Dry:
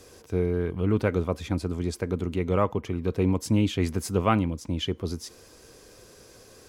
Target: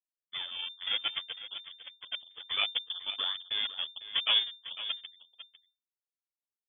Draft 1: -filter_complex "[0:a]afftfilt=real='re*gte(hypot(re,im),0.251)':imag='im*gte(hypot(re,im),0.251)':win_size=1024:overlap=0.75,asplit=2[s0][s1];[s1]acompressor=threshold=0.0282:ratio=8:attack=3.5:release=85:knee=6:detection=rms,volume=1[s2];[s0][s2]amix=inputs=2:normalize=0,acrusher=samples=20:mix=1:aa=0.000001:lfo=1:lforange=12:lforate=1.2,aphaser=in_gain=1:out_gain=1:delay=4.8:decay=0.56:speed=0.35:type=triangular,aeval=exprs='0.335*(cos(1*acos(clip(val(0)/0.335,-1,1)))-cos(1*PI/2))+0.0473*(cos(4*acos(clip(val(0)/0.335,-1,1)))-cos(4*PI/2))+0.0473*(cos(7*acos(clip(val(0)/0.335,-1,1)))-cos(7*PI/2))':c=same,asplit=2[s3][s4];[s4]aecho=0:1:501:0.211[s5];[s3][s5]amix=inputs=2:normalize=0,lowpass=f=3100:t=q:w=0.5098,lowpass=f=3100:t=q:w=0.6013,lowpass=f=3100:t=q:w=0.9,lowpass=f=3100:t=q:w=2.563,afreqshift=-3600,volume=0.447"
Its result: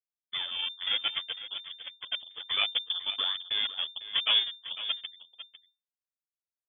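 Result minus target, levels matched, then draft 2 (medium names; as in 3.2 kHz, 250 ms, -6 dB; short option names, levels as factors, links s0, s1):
compression: peak gain reduction -10 dB
-filter_complex "[0:a]afftfilt=real='re*gte(hypot(re,im),0.251)':imag='im*gte(hypot(re,im),0.251)':win_size=1024:overlap=0.75,asplit=2[s0][s1];[s1]acompressor=threshold=0.0075:ratio=8:attack=3.5:release=85:knee=6:detection=rms,volume=1[s2];[s0][s2]amix=inputs=2:normalize=0,acrusher=samples=20:mix=1:aa=0.000001:lfo=1:lforange=12:lforate=1.2,aphaser=in_gain=1:out_gain=1:delay=4.8:decay=0.56:speed=0.35:type=triangular,aeval=exprs='0.335*(cos(1*acos(clip(val(0)/0.335,-1,1)))-cos(1*PI/2))+0.0473*(cos(4*acos(clip(val(0)/0.335,-1,1)))-cos(4*PI/2))+0.0473*(cos(7*acos(clip(val(0)/0.335,-1,1)))-cos(7*PI/2))':c=same,asplit=2[s3][s4];[s4]aecho=0:1:501:0.211[s5];[s3][s5]amix=inputs=2:normalize=0,lowpass=f=3100:t=q:w=0.5098,lowpass=f=3100:t=q:w=0.6013,lowpass=f=3100:t=q:w=0.9,lowpass=f=3100:t=q:w=2.563,afreqshift=-3600,volume=0.447"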